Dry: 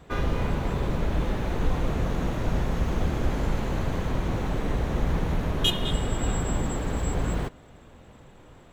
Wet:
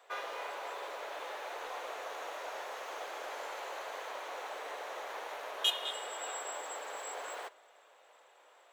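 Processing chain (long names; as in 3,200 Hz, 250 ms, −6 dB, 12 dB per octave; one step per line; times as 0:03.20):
inverse Chebyshev high-pass filter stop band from 210 Hz, stop band 50 dB
convolution reverb RT60 0.70 s, pre-delay 7 ms, DRR 18 dB
level −5 dB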